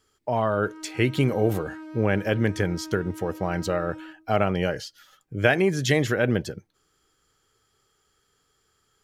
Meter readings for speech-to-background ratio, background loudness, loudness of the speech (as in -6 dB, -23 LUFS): 16.0 dB, -41.0 LUFS, -25.0 LUFS